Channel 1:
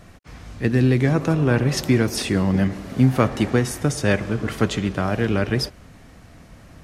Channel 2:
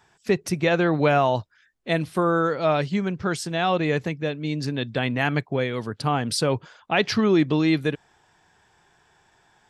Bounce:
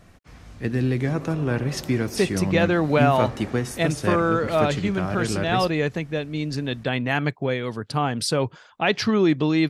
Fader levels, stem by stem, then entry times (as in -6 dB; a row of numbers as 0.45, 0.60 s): -5.5, 0.0 dB; 0.00, 1.90 s